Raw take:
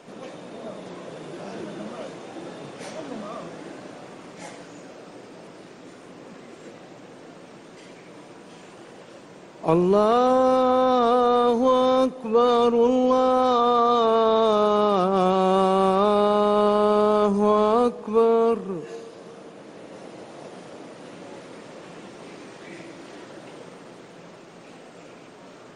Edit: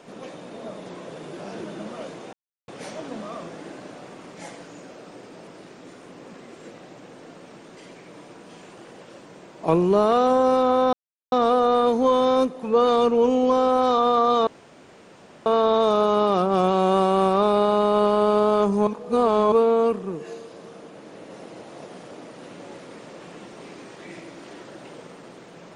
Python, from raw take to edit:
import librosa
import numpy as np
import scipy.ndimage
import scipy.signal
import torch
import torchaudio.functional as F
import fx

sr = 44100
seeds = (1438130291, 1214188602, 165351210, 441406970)

y = fx.edit(x, sr, fx.silence(start_s=2.33, length_s=0.35),
    fx.insert_silence(at_s=10.93, length_s=0.39),
    fx.insert_room_tone(at_s=14.08, length_s=0.99),
    fx.reverse_span(start_s=17.49, length_s=0.65), tone=tone)